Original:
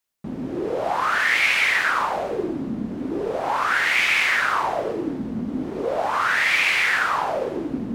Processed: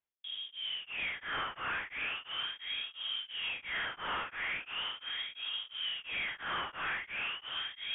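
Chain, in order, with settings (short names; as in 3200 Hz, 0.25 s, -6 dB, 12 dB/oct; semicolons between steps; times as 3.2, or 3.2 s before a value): soft clip -24 dBFS, distortion -8 dB; on a send: darkening echo 0.751 s, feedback 41%, low-pass 2100 Hz, level -6 dB; on the sum: inverted band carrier 3500 Hz; beating tremolo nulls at 2.9 Hz; gain -8.5 dB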